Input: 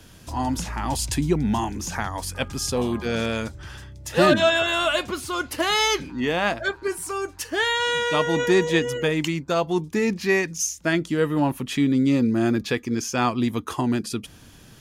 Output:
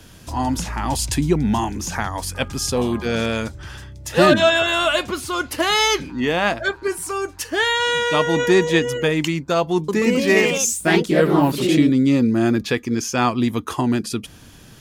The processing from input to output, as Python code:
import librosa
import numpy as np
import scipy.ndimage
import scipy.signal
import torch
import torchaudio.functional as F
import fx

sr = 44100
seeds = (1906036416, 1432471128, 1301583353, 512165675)

y = fx.echo_pitch(x, sr, ms=133, semitones=2, count=3, db_per_echo=-3.0, at=(9.75, 12.01))
y = F.gain(torch.from_numpy(y), 3.5).numpy()